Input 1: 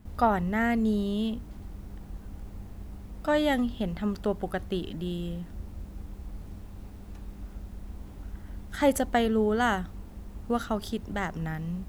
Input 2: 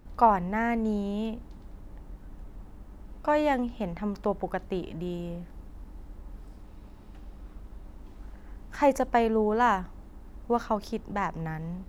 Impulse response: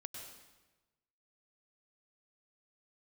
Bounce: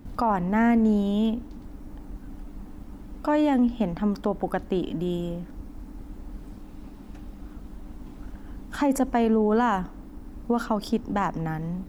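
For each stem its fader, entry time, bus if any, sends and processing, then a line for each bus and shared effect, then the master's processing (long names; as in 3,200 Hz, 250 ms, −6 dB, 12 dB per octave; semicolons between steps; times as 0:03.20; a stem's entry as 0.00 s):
−4.0 dB, 0.00 s, no send, reverb reduction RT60 1.6 s; parametric band 140 Hz +6 dB; compressor whose output falls as the input rises −33 dBFS
+2.5 dB, 0.00 s, polarity flipped, send −21.5 dB, parametric band 270 Hz +12 dB 0.56 octaves; brickwall limiter −17 dBFS, peak gain reduction 11.5 dB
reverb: on, RT60 1.1 s, pre-delay 93 ms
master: no processing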